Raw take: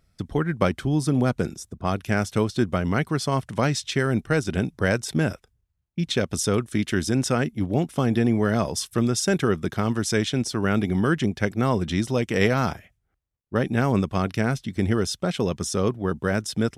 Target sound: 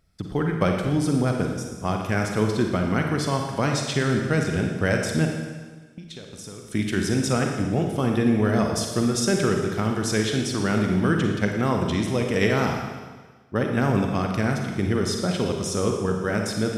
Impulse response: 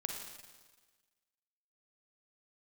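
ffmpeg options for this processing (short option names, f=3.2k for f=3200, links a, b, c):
-filter_complex "[0:a]asettb=1/sr,asplit=3[a][b][c];[a]atrim=end=5.254[d];[b]atrim=start=5.25:end=6.65,asetpts=PTS-STARTPTS,afade=t=in:d=0.004:c=qsin,afade=t=out:st=1.396:d=0.004:c=qsin,acompressor=threshold=-36dB:ratio=12[e];[c]atrim=start=6.646[f];[d][e]acrossfade=d=0.004:c1=hsin:c2=qsin[g];[g][f]acrossfade=d=0.004:c1=qsin:c2=hsin[h];[1:a]atrim=start_sample=2205[i];[h][i]afir=irnorm=-1:irlink=0"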